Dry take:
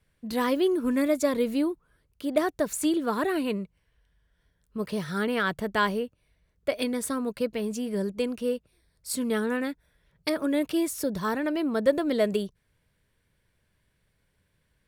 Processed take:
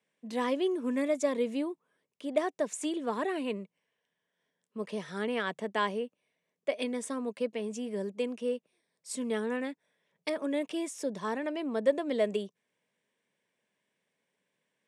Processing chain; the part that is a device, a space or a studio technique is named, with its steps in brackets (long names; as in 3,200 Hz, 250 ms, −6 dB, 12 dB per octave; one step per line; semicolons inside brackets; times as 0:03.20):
television speaker (loudspeaker in its box 220–8,500 Hz, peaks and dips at 320 Hz −6 dB, 1,400 Hz −9 dB, 4,400 Hz −9 dB)
level −3 dB